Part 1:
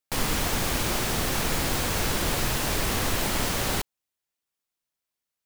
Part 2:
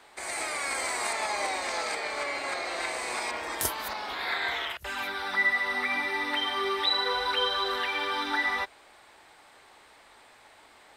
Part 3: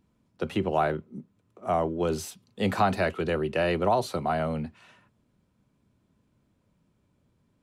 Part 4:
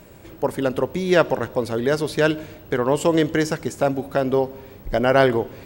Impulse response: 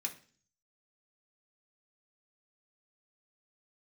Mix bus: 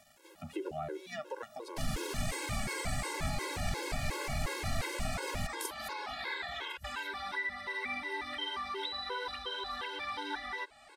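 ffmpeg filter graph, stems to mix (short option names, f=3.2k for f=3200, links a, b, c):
-filter_complex "[0:a]adelay=1650,volume=1.5dB[a];[1:a]adelay=2000,volume=2dB[b];[2:a]equalizer=f=360:w=3.9:g=5.5,volume=-8dB,asplit=2[c][d];[3:a]highpass=600,volume=-6.5dB[e];[d]apad=whole_len=249554[f];[e][f]sidechaincompress=threshold=-43dB:ratio=8:attack=16:release=283[g];[a][c][g]amix=inputs=3:normalize=0,acrusher=bits=8:mix=0:aa=0.000001,alimiter=limit=-19.5dB:level=0:latency=1:release=57,volume=0dB[h];[b][h]amix=inputs=2:normalize=0,lowpass=11k,acrossover=split=170[i][j];[j]acompressor=threshold=-35dB:ratio=3[k];[i][k]amix=inputs=2:normalize=0,afftfilt=real='re*gt(sin(2*PI*2.8*pts/sr)*(1-2*mod(floor(b*sr/1024/280),2)),0)':imag='im*gt(sin(2*PI*2.8*pts/sr)*(1-2*mod(floor(b*sr/1024/280),2)),0)':win_size=1024:overlap=0.75"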